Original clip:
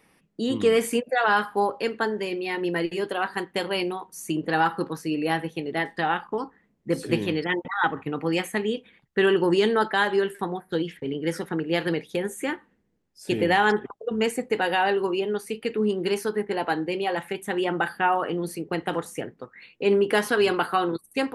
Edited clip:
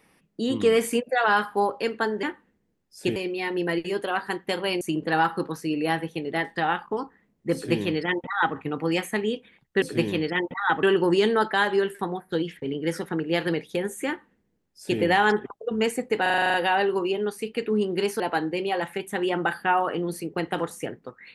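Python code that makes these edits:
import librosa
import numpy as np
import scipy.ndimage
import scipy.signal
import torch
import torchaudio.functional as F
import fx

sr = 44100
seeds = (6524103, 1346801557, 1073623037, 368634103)

y = fx.edit(x, sr, fx.cut(start_s=3.88, length_s=0.34),
    fx.duplicate(start_s=6.96, length_s=1.01, to_s=9.23),
    fx.duplicate(start_s=12.47, length_s=0.93, to_s=2.23),
    fx.stutter(start_s=14.62, slice_s=0.04, count=9),
    fx.cut(start_s=16.28, length_s=0.27), tone=tone)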